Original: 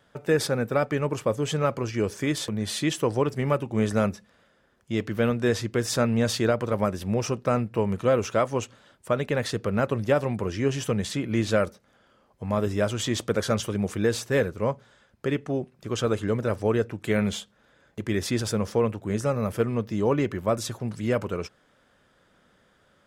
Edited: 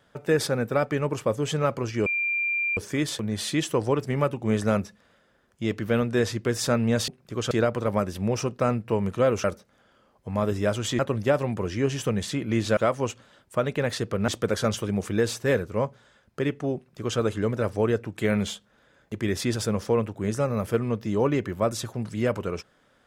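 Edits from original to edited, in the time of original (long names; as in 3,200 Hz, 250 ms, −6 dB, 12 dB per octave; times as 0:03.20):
0:02.06: insert tone 2,380 Hz −23 dBFS 0.71 s
0:08.30–0:09.81: swap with 0:11.59–0:13.14
0:15.62–0:16.05: duplicate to 0:06.37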